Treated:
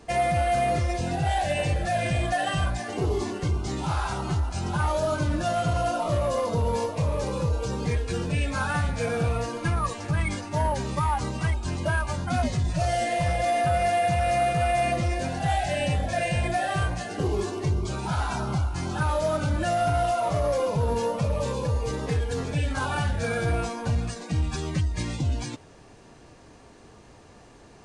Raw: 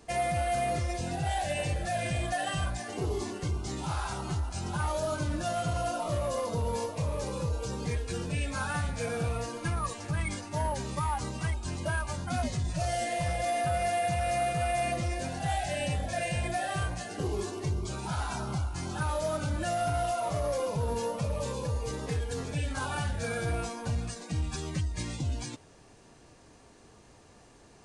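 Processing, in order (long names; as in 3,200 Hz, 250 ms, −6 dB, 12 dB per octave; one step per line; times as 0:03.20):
high-shelf EQ 6,400 Hz −8.5 dB
level +6 dB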